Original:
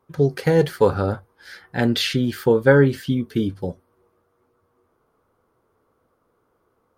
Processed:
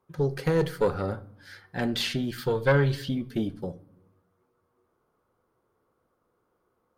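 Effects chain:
0:02.38–0:03.09: octave-band graphic EQ 125/250/4,000 Hz +4/−9/+9 dB
tube saturation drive 8 dB, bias 0.55
on a send: convolution reverb RT60 0.75 s, pre-delay 6 ms, DRR 14 dB
on the sum: level −4 dB

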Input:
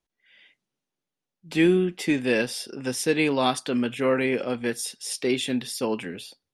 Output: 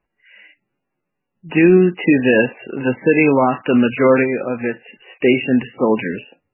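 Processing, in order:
0:04.23–0:05.23: downward compressor 2 to 1, threshold −32 dBFS, peak gain reduction 6.5 dB
boost into a limiter +13 dB
level −1.5 dB
MP3 8 kbit/s 11,025 Hz

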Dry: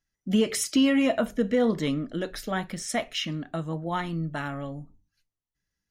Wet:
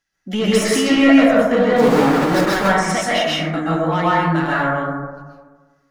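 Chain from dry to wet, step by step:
0:01.76–0:02.55: each half-wave held at its own peak
mid-hump overdrive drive 16 dB, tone 3,900 Hz, clips at −12.5 dBFS
dense smooth reverb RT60 1.4 s, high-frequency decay 0.25×, pre-delay 115 ms, DRR −7.5 dB

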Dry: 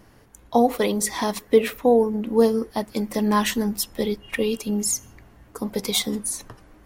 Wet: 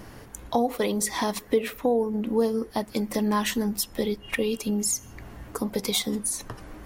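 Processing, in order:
downward compressor 2 to 1, threshold −41 dBFS, peak gain reduction 16.5 dB
level +8.5 dB

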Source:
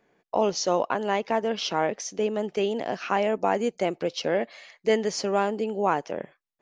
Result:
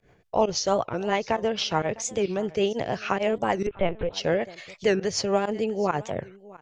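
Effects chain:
low shelf with overshoot 150 Hz +13.5 dB, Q 1.5
in parallel at −0.5 dB: downward compressor, threshold −38 dBFS, peak gain reduction 18 dB
on the sum: rotating-speaker cabinet horn 6.7 Hz
fake sidechain pumping 132 BPM, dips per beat 1, −21 dB, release 61 ms
on a send: single-tap delay 656 ms −21 dB
0:03.67–0:04.13: on the sum: linear-prediction vocoder at 8 kHz pitch kept
wow of a warped record 45 rpm, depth 250 cents
level +2.5 dB

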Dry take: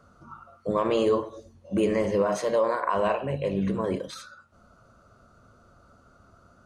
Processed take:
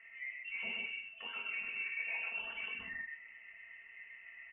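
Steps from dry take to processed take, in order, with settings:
high-pass filter 1,100 Hz 12 dB per octave
comb filter 4 ms, depth 85%
dynamic equaliser 1,800 Hz, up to −7 dB, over −47 dBFS, Q 1.1
reversed playback
downward compressor 6 to 1, threshold −47 dBFS, peak gain reduction 20 dB
reversed playback
tempo change 1.6×
high-frequency loss of the air 240 metres
single-tap delay 117 ms −3.5 dB
on a send at −2.5 dB: convolution reverb, pre-delay 6 ms
on the sum: wrong playback speed 48 kHz file played as 44.1 kHz
voice inversion scrambler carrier 3,200 Hz
level +5.5 dB

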